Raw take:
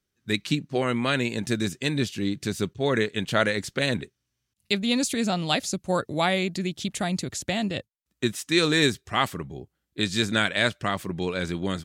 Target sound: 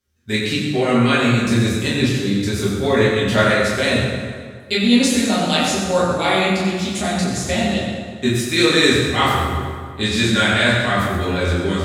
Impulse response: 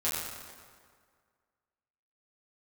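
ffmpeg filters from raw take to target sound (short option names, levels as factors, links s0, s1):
-filter_complex "[0:a]equalizer=f=81:w=2.5:g=8.5,bandreject=f=46.32:t=h:w=4,bandreject=f=92.64:t=h:w=4,bandreject=f=138.96:t=h:w=4,bandreject=f=185.28:t=h:w=4,bandreject=f=231.6:t=h:w=4,bandreject=f=277.92:t=h:w=4,bandreject=f=324.24:t=h:w=4,bandreject=f=370.56:t=h:w=4,bandreject=f=416.88:t=h:w=4,bandreject=f=463.2:t=h:w=4,bandreject=f=509.52:t=h:w=4,bandreject=f=555.84:t=h:w=4,bandreject=f=602.16:t=h:w=4,bandreject=f=648.48:t=h:w=4,bandreject=f=694.8:t=h:w=4,bandreject=f=741.12:t=h:w=4,bandreject=f=787.44:t=h:w=4,bandreject=f=833.76:t=h:w=4,bandreject=f=880.08:t=h:w=4,bandreject=f=926.4:t=h:w=4,bandreject=f=972.72:t=h:w=4,bandreject=f=1019.04:t=h:w=4,bandreject=f=1065.36:t=h:w=4,bandreject=f=1111.68:t=h:w=4,bandreject=f=1158:t=h:w=4,bandreject=f=1204.32:t=h:w=4,bandreject=f=1250.64:t=h:w=4,bandreject=f=1296.96:t=h:w=4,bandreject=f=1343.28:t=h:w=4,bandreject=f=1389.6:t=h:w=4,bandreject=f=1435.92:t=h:w=4,bandreject=f=1482.24:t=h:w=4,bandreject=f=1528.56:t=h:w=4,bandreject=f=1574.88:t=h:w=4,bandreject=f=1621.2:t=h:w=4,bandreject=f=1667.52:t=h:w=4,bandreject=f=1713.84:t=h:w=4[s0];[1:a]atrim=start_sample=2205[s1];[s0][s1]afir=irnorm=-1:irlink=0,volume=1.12"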